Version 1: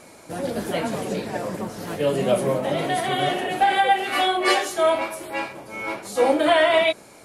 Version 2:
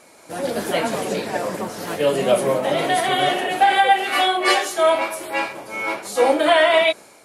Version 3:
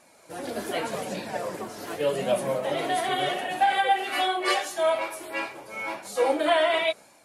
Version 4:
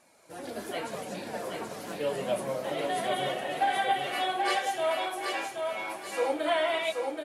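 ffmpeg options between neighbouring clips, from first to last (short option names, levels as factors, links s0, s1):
-af "lowshelf=f=220:g=-11.5,dynaudnorm=f=130:g=5:m=2.37,volume=0.841"
-af "flanger=delay=1.1:depth=1.9:regen=-50:speed=0.84:shape=sinusoidal,volume=0.668"
-af "aecho=1:1:779|1558|2337|3116:0.631|0.196|0.0606|0.0188,volume=0.531"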